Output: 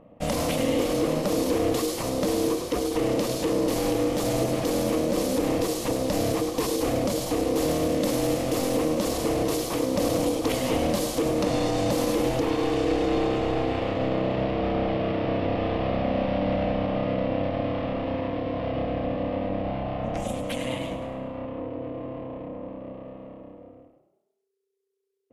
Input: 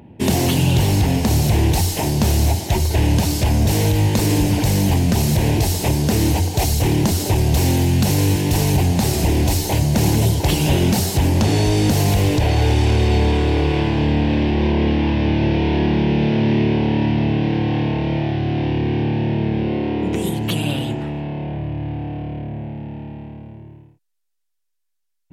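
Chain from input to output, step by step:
pitch shifter −2 semitones
ring modulation 390 Hz
echo with shifted repeats 103 ms, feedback 49%, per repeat +30 Hz, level −10 dB
level −6 dB

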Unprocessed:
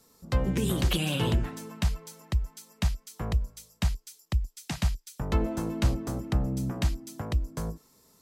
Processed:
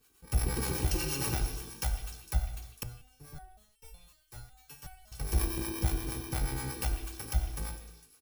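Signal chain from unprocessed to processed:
samples in bit-reversed order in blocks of 64 samples
comb filter 2.6 ms, depth 61%
tube saturation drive 17 dB, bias 0.6
two-band tremolo in antiphase 8.4 Hz, depth 70%, crossover 560 Hz
echo through a band-pass that steps 152 ms, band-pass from 3,100 Hz, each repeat 0.7 octaves, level −8.5 dB
reverb whose tail is shaped and stops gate 380 ms falling, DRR 6 dB
0:02.83–0:05.12: step-sequenced resonator 5.4 Hz 120–450 Hz

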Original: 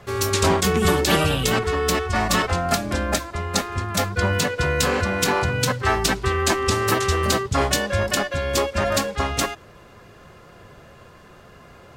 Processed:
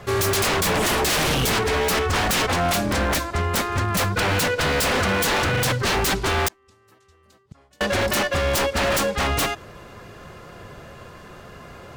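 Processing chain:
0:06.48–0:07.81: gate with flip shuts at −17 dBFS, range −41 dB
wave folding −21 dBFS
level +5 dB

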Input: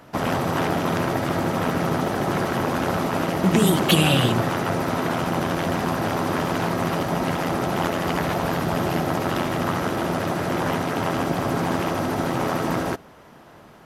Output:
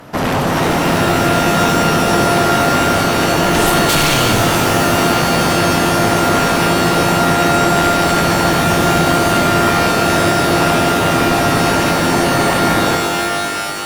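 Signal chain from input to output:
sine wavefolder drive 14 dB, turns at −4.5 dBFS
reverb with rising layers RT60 3 s, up +12 semitones, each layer −2 dB, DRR 5.5 dB
level −8 dB

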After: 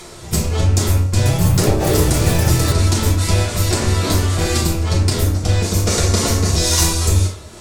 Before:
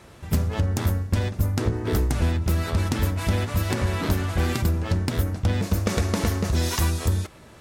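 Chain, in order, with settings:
loose part that buzzes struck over −20 dBFS, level −32 dBFS
upward compression, threshold −39 dBFS
parametric band 7,300 Hz +14.5 dB 1.8 octaves
convolution reverb RT60 0.55 s, pre-delay 3 ms, DRR −8 dB
0:01.04–0:03.09: delay with pitch and tempo change per echo 147 ms, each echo +5 semitones, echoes 2
level −5.5 dB

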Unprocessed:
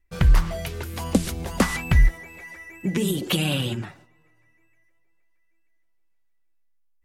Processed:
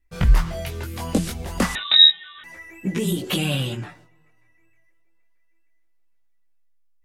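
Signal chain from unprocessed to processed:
multi-voice chorus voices 2, 0.32 Hz, delay 20 ms, depth 4.7 ms
0:01.75–0:02.44: voice inversion scrambler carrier 3,800 Hz
level +3 dB

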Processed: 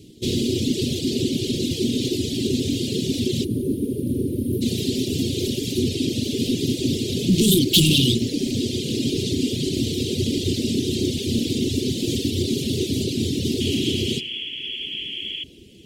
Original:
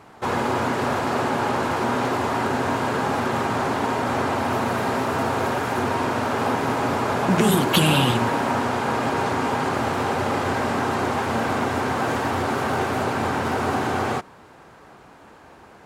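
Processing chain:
on a send at −14 dB: convolution reverb RT60 2.0 s, pre-delay 68 ms
on the sum: reverb reduction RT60 1.3 s
hard clipping −20 dBFS, distortion −14 dB
gain on a spectral selection 0:03.44–0:04.62, 620–8,800 Hz −22 dB
dynamic equaliser 4,100 Hz, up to +5 dB, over −46 dBFS, Q 0.78
sound drawn into the spectrogram noise, 0:13.60–0:15.44, 860–3,400 Hz −31 dBFS
elliptic band-stop filter 360–3,300 Hz, stop band 60 dB
feedback echo with a band-pass in the loop 1,149 ms, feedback 69%, band-pass 970 Hz, level −19 dB
level +8.5 dB

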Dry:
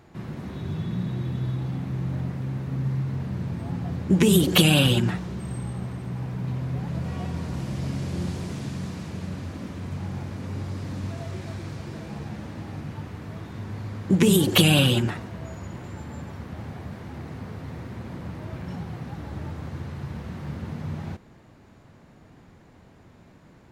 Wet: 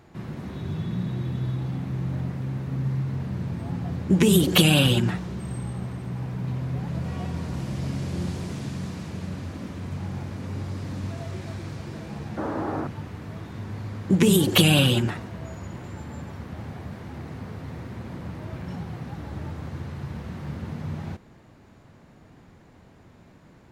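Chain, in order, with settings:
0:12.37–0:12.87: flat-topped bell 660 Hz +14.5 dB 2.8 octaves

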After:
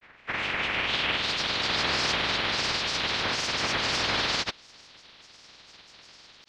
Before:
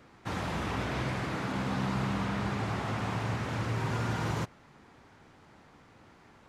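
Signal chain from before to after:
ceiling on every frequency bin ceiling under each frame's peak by 28 dB
low-pass filter sweep 2,100 Hz → 4,600 Hz, 0:00.26–0:01.53
granular cloud, pitch spread up and down by 3 semitones
level +3.5 dB

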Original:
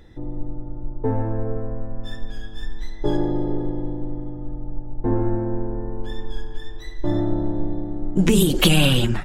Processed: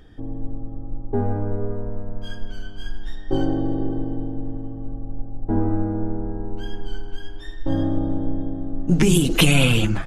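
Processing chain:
wrong playback speed 48 kHz file played as 44.1 kHz

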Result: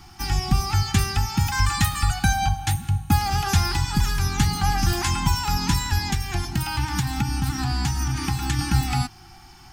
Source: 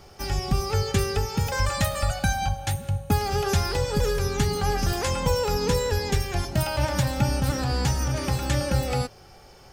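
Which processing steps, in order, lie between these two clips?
elliptic band-stop filter 350–750 Hz, stop band 40 dB
0:06.02–0:08.59: downward compressor, threshold −24 dBFS, peak gain reduction 7 dB
level +4 dB

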